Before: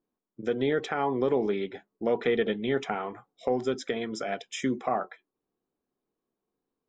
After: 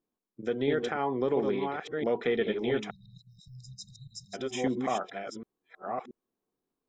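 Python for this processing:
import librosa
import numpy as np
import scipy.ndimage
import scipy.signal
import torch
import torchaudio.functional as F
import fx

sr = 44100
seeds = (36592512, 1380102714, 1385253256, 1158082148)

y = fx.reverse_delay(x, sr, ms=679, wet_db=-4)
y = fx.brickwall_bandstop(y, sr, low_hz=180.0, high_hz=3700.0, at=(2.89, 4.33), fade=0.02)
y = y * librosa.db_to_amplitude(-2.5)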